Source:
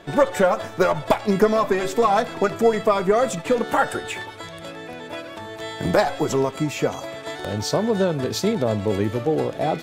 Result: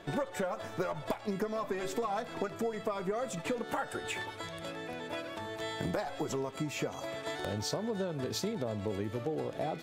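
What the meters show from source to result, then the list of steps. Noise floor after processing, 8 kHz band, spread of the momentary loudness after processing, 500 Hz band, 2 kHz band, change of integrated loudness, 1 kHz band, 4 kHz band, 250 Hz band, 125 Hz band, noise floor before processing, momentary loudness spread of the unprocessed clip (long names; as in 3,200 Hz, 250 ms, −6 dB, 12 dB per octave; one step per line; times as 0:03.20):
−45 dBFS, −10.0 dB, 5 LU, −15.0 dB, −12.0 dB, −14.5 dB, −15.0 dB, −10.0 dB, −13.0 dB, −12.0 dB, −38 dBFS, 15 LU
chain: downward compressor 6 to 1, threshold −26 dBFS, peak gain reduction 14 dB
level −5.5 dB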